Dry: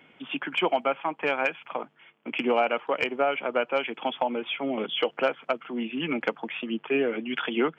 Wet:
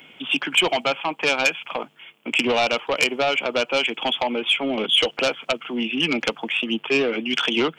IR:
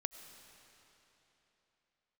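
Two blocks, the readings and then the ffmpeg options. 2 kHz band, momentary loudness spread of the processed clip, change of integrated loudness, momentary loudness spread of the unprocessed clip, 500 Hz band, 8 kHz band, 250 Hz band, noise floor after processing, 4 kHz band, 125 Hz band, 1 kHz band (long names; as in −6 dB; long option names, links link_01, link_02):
+8.0 dB, 7 LU, +6.5 dB, 9 LU, +3.0 dB, can't be measured, +4.0 dB, −52 dBFS, +13.0 dB, +6.0 dB, +2.5 dB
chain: -af "aeval=exprs='0.237*sin(PI/2*1.78*val(0)/0.237)':channel_layout=same,aexciter=amount=3.2:drive=4.5:freq=2500,volume=-3.5dB"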